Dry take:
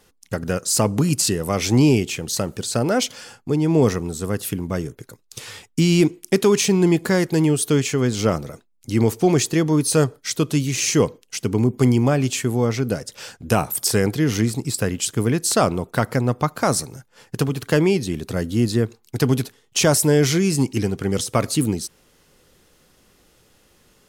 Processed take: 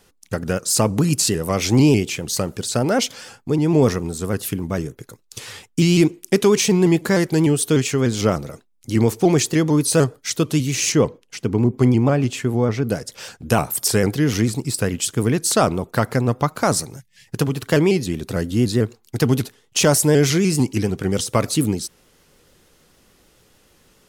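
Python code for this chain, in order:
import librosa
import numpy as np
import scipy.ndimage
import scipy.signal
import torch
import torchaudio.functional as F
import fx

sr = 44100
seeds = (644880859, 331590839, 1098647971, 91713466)

y = fx.high_shelf(x, sr, hz=4000.0, db=-10.5, at=(10.92, 12.89))
y = fx.spec_box(y, sr, start_s=17.0, length_s=0.28, low_hz=210.0, high_hz=1700.0, gain_db=-23)
y = fx.vibrato_shape(y, sr, shape='saw_up', rate_hz=6.7, depth_cents=100.0)
y = y * librosa.db_to_amplitude(1.0)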